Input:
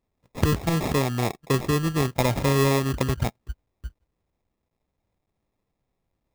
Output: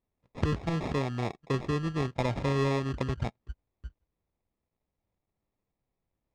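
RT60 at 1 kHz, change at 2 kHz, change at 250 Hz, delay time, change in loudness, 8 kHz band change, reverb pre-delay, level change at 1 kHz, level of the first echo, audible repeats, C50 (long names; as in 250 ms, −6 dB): no reverb audible, −8.0 dB, −6.5 dB, no echo audible, −7.0 dB, −17.0 dB, no reverb audible, −7.0 dB, no echo audible, no echo audible, no reverb audible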